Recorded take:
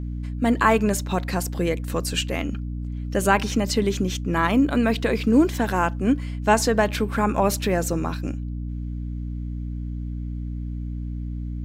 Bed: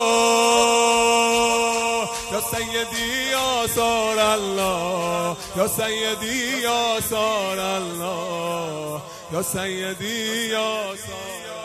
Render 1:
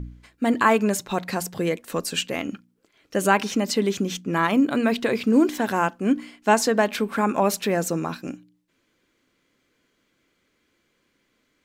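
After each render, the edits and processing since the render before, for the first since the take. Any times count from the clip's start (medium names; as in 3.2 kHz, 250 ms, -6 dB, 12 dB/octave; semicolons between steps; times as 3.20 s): de-hum 60 Hz, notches 5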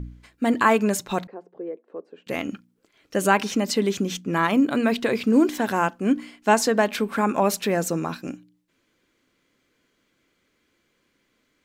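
1.27–2.27 s: ladder band-pass 460 Hz, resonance 50%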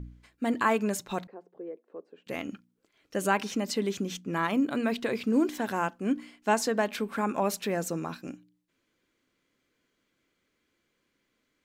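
trim -7 dB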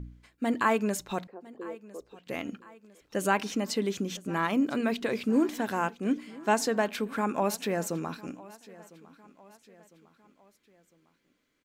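feedback delay 1004 ms, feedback 48%, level -21 dB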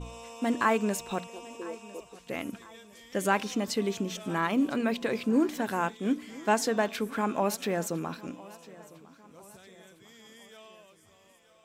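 add bed -28.5 dB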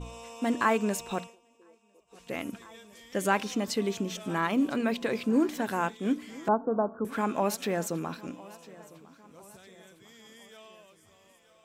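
1.22–2.21 s: dip -20 dB, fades 0.14 s; 6.48–7.05 s: steep low-pass 1.4 kHz 96 dB/octave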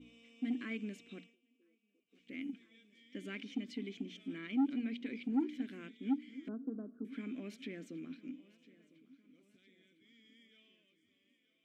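vowel filter i; saturation -25.5 dBFS, distortion -12 dB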